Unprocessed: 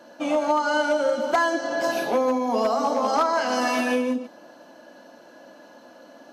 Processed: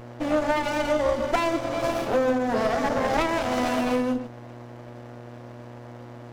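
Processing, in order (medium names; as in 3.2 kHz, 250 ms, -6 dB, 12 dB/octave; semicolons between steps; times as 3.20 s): mains buzz 120 Hz, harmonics 11, -42 dBFS -4 dB/octave; sliding maximum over 17 samples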